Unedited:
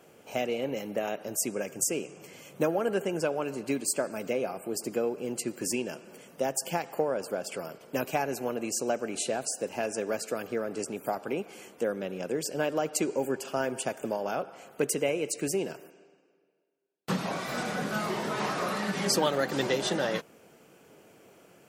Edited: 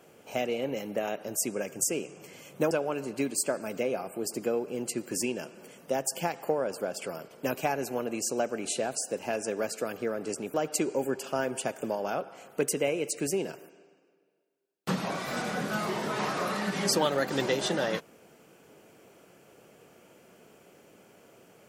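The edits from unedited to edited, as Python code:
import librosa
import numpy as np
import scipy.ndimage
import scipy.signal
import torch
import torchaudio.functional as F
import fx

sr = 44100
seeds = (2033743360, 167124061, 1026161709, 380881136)

y = fx.edit(x, sr, fx.cut(start_s=2.71, length_s=0.5),
    fx.cut(start_s=11.04, length_s=1.71), tone=tone)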